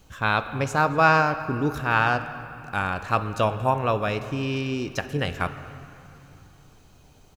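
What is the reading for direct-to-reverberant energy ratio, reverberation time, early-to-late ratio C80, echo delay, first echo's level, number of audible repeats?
10.0 dB, 2.8 s, 12.0 dB, 0.233 s, -23.0 dB, 1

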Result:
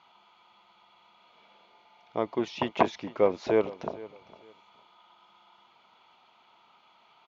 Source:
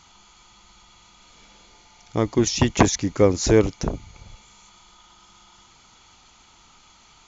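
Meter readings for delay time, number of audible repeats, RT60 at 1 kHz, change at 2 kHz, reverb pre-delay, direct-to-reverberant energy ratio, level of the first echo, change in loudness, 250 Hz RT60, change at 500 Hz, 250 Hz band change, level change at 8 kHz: 0.456 s, 2, none, -8.0 dB, none, none, -19.0 dB, -8.5 dB, none, -5.5 dB, -11.5 dB, n/a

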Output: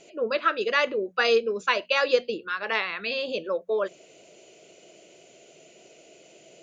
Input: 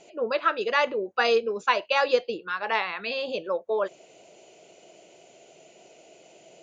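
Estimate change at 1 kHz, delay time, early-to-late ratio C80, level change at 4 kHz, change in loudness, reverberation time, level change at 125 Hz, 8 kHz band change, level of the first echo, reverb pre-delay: -2.5 dB, none, none, +2.0 dB, +0.5 dB, none, n/a, n/a, none, none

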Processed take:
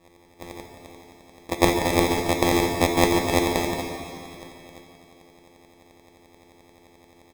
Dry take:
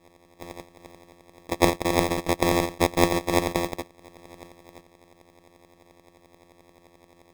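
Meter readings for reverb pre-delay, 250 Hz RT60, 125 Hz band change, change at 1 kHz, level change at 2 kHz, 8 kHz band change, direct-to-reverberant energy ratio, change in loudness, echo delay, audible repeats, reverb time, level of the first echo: 5 ms, 2.6 s, +2.0 dB, +2.0 dB, +3.0 dB, +3.0 dB, 3.0 dB, +2.0 dB, 0.144 s, 1, 2.7 s, -12.5 dB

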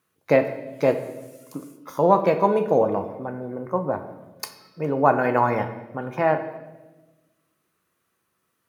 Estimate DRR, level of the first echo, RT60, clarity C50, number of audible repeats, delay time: 7.0 dB, none, 1.1 s, 10.5 dB, none, none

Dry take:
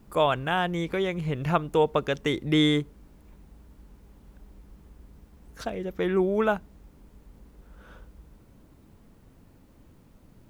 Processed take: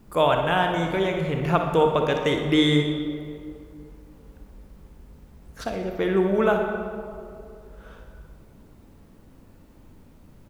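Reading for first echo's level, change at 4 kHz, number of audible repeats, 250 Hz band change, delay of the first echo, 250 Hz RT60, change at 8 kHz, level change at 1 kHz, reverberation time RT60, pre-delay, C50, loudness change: -10.5 dB, +3.0 dB, 1, +3.5 dB, 61 ms, 2.5 s, n/a, +4.5 dB, 2.5 s, 31 ms, 3.5 dB, +3.0 dB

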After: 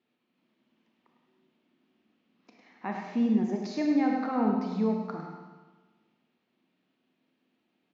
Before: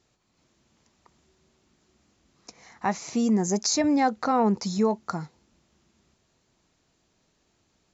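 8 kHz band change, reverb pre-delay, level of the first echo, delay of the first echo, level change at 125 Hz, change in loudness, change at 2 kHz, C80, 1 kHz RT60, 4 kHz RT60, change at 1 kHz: n/a, 27 ms, -7.5 dB, 0.104 s, -5.0 dB, -3.5 dB, -6.0 dB, 3.0 dB, 1.3 s, 1.3 s, -7.5 dB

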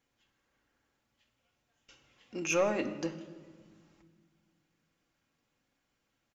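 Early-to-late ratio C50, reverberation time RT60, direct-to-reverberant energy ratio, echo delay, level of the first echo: 12.5 dB, 1.6 s, 5.0 dB, 0.158 s, -21.5 dB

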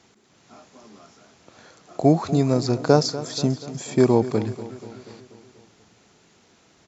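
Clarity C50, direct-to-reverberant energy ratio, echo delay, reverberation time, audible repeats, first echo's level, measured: none, none, 0.242 s, none, 5, -15.0 dB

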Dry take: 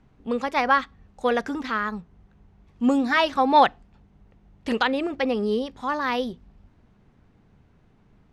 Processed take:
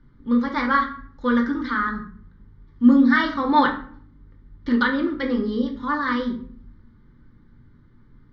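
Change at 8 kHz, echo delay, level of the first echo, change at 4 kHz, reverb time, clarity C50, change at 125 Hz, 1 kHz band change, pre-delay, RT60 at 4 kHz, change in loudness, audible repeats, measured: n/a, none, none, -3.0 dB, 0.55 s, 9.5 dB, n/a, -1.0 dB, 3 ms, 0.35 s, +2.5 dB, none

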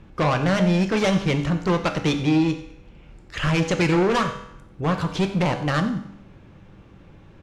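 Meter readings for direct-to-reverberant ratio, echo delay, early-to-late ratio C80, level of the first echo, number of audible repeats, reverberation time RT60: 5.5 dB, 90 ms, 11.5 dB, -16.5 dB, 1, 0.75 s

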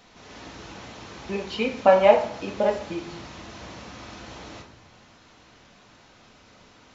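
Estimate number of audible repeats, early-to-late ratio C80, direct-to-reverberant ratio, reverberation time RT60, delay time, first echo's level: none, 12.0 dB, 1.5 dB, 0.70 s, none, none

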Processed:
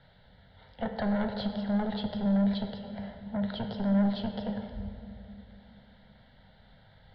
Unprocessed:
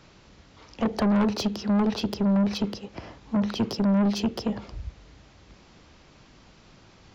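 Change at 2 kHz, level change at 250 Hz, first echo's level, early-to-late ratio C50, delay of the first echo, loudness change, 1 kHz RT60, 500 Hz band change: -4.0 dB, -5.0 dB, none, 7.0 dB, none, -6.0 dB, 2.3 s, -5.0 dB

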